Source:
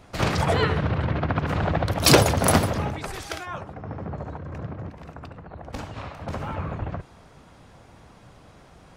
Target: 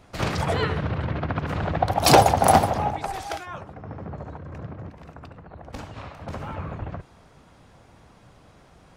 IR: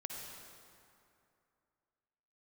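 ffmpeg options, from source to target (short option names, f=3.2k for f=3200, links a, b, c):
-filter_complex "[0:a]asettb=1/sr,asplit=3[a][b][c];[a]atrim=end=1.824[d];[b]atrim=start=1.82:end=3.37,asetpts=PTS-STARTPTS,afade=t=in:d=0.004:c=qsin,afade=t=out:st=1.546:d=0.004:c=qsin,equalizer=f=780:t=o:w=0.51:g=14.5[e];[c]atrim=start=3.366[f];[d][e]acrossfade=d=0.004:c1=hsin:c2=qsin[g];[g][f]acrossfade=d=0.004:c1=qsin:c2=hsin,volume=-2.5dB"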